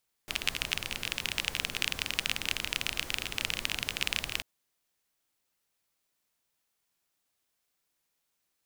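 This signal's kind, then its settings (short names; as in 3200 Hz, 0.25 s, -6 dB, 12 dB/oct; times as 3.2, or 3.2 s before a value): rain from filtered ticks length 4.14 s, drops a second 25, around 2700 Hz, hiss -8 dB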